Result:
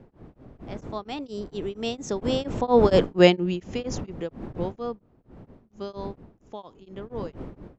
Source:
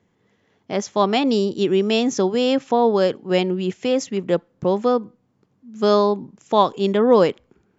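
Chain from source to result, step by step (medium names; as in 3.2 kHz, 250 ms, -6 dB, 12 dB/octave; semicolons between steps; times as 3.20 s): wind noise 300 Hz -24 dBFS; Doppler pass-by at 3.07 s, 13 m/s, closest 2.5 m; tremolo of two beating tones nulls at 4.3 Hz; trim +7 dB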